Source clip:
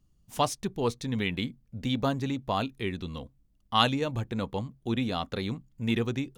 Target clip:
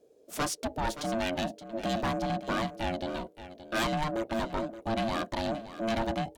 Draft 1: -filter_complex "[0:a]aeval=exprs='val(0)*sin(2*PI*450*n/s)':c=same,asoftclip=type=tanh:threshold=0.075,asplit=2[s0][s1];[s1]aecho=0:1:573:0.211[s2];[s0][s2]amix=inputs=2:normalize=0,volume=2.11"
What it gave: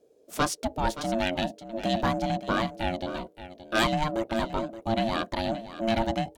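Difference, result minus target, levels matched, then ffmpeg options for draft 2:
saturation: distortion -6 dB
-filter_complex "[0:a]aeval=exprs='val(0)*sin(2*PI*450*n/s)':c=same,asoftclip=type=tanh:threshold=0.0266,asplit=2[s0][s1];[s1]aecho=0:1:573:0.211[s2];[s0][s2]amix=inputs=2:normalize=0,volume=2.11"

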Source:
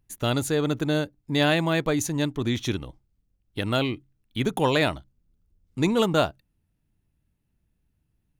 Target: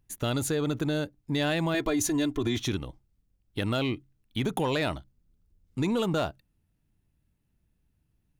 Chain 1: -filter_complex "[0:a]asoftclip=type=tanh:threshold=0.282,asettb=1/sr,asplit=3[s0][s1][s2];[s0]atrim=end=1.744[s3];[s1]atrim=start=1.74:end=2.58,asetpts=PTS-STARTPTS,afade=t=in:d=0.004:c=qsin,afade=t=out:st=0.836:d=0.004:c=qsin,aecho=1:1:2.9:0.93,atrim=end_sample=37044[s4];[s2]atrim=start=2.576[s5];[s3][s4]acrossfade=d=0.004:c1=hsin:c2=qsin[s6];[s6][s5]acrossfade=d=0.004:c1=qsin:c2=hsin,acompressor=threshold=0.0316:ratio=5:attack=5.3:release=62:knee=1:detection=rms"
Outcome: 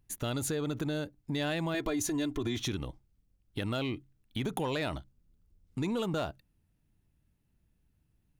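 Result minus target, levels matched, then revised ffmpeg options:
compression: peak gain reduction +5 dB
-filter_complex "[0:a]asoftclip=type=tanh:threshold=0.282,asettb=1/sr,asplit=3[s0][s1][s2];[s0]atrim=end=1.744[s3];[s1]atrim=start=1.74:end=2.58,asetpts=PTS-STARTPTS,afade=t=in:d=0.004:c=qsin,afade=t=out:st=0.836:d=0.004:c=qsin,aecho=1:1:2.9:0.93,atrim=end_sample=37044[s4];[s2]atrim=start=2.576[s5];[s3][s4]acrossfade=d=0.004:c1=hsin:c2=qsin[s6];[s6][s5]acrossfade=d=0.004:c1=qsin:c2=hsin,acompressor=threshold=0.0668:ratio=5:attack=5.3:release=62:knee=1:detection=rms"

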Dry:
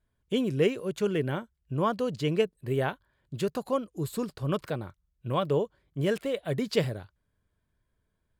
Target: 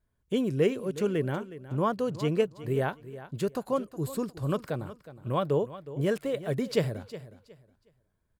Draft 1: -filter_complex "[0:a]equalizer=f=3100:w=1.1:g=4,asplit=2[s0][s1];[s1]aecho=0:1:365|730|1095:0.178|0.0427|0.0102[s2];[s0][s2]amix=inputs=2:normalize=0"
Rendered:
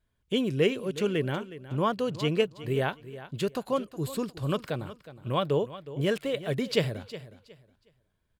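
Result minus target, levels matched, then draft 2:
4 kHz band +7.0 dB
-filter_complex "[0:a]equalizer=f=3100:w=1.1:g=-4.5,asplit=2[s0][s1];[s1]aecho=0:1:365|730|1095:0.178|0.0427|0.0102[s2];[s0][s2]amix=inputs=2:normalize=0"

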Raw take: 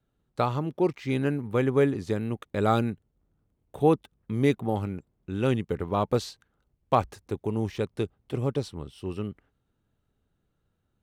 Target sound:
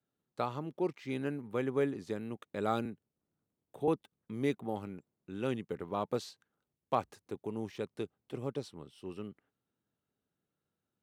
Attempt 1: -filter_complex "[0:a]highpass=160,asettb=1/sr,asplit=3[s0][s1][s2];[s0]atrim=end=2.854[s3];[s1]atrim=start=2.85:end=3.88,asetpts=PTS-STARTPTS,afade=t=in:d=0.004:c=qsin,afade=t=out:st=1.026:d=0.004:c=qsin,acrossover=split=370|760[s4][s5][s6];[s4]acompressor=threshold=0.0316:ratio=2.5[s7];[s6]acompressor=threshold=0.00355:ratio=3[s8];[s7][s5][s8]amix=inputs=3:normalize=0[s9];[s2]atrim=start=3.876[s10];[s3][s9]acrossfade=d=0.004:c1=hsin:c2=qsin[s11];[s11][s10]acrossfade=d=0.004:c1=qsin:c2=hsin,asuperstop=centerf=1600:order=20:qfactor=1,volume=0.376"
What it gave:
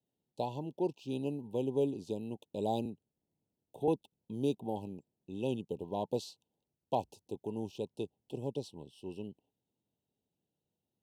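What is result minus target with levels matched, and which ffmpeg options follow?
2 kHz band -12.0 dB
-filter_complex "[0:a]highpass=160,asettb=1/sr,asplit=3[s0][s1][s2];[s0]atrim=end=2.854[s3];[s1]atrim=start=2.85:end=3.88,asetpts=PTS-STARTPTS,afade=t=in:d=0.004:c=qsin,afade=t=out:st=1.026:d=0.004:c=qsin,acrossover=split=370|760[s4][s5][s6];[s4]acompressor=threshold=0.0316:ratio=2.5[s7];[s6]acompressor=threshold=0.00355:ratio=3[s8];[s7][s5][s8]amix=inputs=3:normalize=0[s9];[s2]atrim=start=3.876[s10];[s3][s9]acrossfade=d=0.004:c1=hsin:c2=qsin[s11];[s11][s10]acrossfade=d=0.004:c1=qsin:c2=hsin,volume=0.376"

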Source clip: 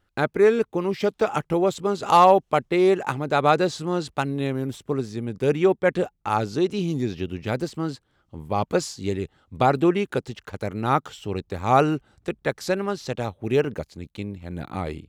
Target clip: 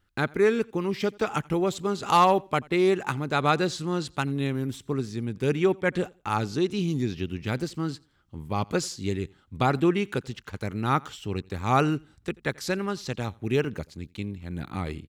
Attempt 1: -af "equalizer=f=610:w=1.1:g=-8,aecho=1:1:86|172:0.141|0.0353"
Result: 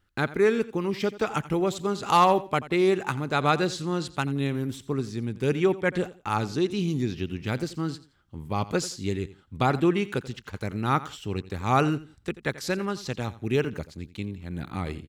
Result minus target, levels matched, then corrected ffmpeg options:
echo-to-direct +8.5 dB
-af "equalizer=f=610:w=1.1:g=-8,aecho=1:1:86|172:0.0531|0.0133"

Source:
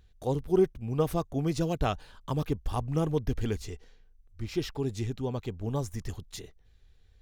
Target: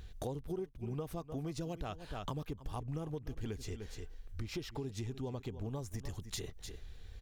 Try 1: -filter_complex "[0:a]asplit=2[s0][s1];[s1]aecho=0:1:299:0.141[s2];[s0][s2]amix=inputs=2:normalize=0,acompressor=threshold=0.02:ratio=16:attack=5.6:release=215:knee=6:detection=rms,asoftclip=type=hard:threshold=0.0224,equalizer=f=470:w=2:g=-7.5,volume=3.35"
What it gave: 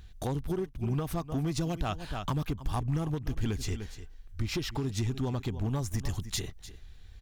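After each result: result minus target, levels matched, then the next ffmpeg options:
compression: peak gain reduction -11 dB; 500 Hz band -4.0 dB
-filter_complex "[0:a]asplit=2[s0][s1];[s1]aecho=0:1:299:0.141[s2];[s0][s2]amix=inputs=2:normalize=0,acompressor=threshold=0.00531:ratio=16:attack=5.6:release=215:knee=6:detection=rms,asoftclip=type=hard:threshold=0.0224,equalizer=f=470:w=2:g=-7.5,volume=3.35"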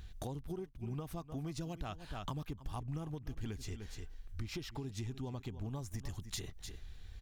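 500 Hz band -4.0 dB
-filter_complex "[0:a]asplit=2[s0][s1];[s1]aecho=0:1:299:0.141[s2];[s0][s2]amix=inputs=2:normalize=0,acompressor=threshold=0.00531:ratio=16:attack=5.6:release=215:knee=6:detection=rms,asoftclip=type=hard:threshold=0.0224,volume=3.35"

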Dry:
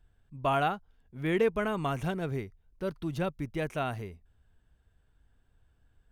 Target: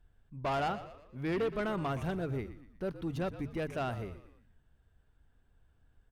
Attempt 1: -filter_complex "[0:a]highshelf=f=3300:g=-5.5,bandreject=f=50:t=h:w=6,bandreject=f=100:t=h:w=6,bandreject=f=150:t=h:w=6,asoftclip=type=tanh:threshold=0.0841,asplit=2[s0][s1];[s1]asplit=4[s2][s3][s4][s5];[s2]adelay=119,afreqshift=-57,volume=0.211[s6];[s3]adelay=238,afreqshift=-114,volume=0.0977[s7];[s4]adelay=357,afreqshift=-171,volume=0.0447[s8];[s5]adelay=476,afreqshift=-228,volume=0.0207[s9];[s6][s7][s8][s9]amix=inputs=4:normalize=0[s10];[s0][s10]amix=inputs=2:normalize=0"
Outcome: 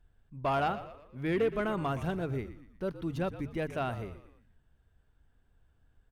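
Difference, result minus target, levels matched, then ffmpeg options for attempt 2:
saturation: distortion -7 dB
-filter_complex "[0:a]highshelf=f=3300:g=-5.5,bandreject=f=50:t=h:w=6,bandreject=f=100:t=h:w=6,bandreject=f=150:t=h:w=6,asoftclip=type=tanh:threshold=0.0398,asplit=2[s0][s1];[s1]asplit=4[s2][s3][s4][s5];[s2]adelay=119,afreqshift=-57,volume=0.211[s6];[s3]adelay=238,afreqshift=-114,volume=0.0977[s7];[s4]adelay=357,afreqshift=-171,volume=0.0447[s8];[s5]adelay=476,afreqshift=-228,volume=0.0207[s9];[s6][s7][s8][s9]amix=inputs=4:normalize=0[s10];[s0][s10]amix=inputs=2:normalize=0"

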